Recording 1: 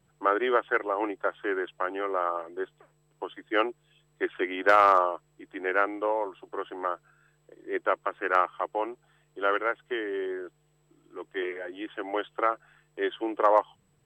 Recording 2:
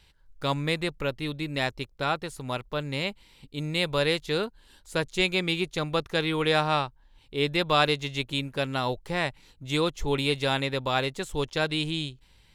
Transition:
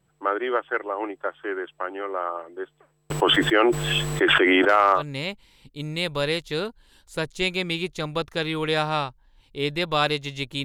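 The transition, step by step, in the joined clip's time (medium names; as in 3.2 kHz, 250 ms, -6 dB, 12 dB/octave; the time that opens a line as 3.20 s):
recording 1
3.10–5.03 s: level flattener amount 100%
4.98 s: go over to recording 2 from 2.76 s, crossfade 0.10 s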